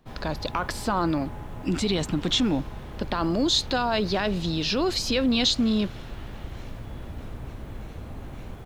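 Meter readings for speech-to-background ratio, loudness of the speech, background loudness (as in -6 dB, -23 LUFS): 14.0 dB, -25.5 LUFS, -39.5 LUFS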